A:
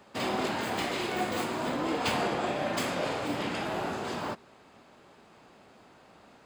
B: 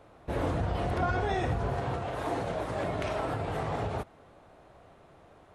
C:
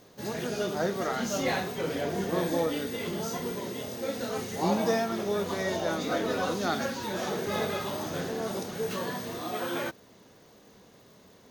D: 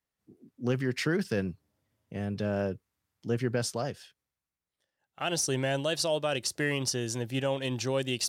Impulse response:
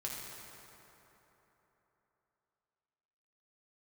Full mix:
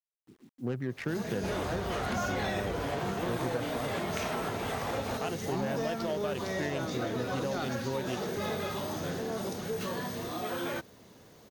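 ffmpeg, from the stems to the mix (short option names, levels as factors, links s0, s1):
-filter_complex "[1:a]tiltshelf=f=970:g=-6,adelay=1150,volume=1.26[s0];[2:a]equalizer=f=75:w=0.64:g=5,asoftclip=type=tanh:threshold=0.0794,adelay=900,volume=0.944[s1];[3:a]adynamicsmooth=sensitivity=2.5:basefreq=730,volume=0.944[s2];[s0][s1][s2]amix=inputs=3:normalize=0,acrusher=bits=10:mix=0:aa=0.000001,acompressor=threshold=0.0282:ratio=2.5"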